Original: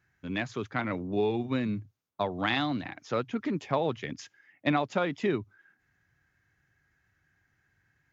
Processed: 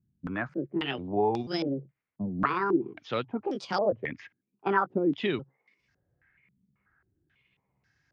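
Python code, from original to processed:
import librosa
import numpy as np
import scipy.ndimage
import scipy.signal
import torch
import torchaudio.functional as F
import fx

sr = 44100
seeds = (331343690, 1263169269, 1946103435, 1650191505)

y = fx.pitch_trill(x, sr, semitones=5.0, every_ms=490)
y = fx.filter_held_lowpass(y, sr, hz=3.7, low_hz=220.0, high_hz=5200.0)
y = y * librosa.db_to_amplitude(-1.5)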